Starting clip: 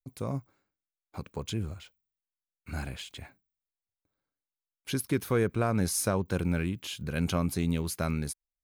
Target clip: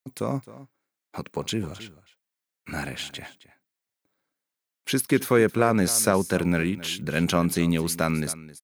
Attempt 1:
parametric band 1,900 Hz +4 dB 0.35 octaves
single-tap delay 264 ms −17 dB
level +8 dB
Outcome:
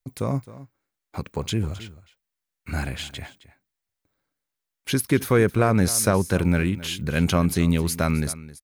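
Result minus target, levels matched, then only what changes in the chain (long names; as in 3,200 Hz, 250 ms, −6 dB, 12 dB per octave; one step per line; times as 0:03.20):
125 Hz band +4.0 dB
add first: high-pass filter 170 Hz 12 dB per octave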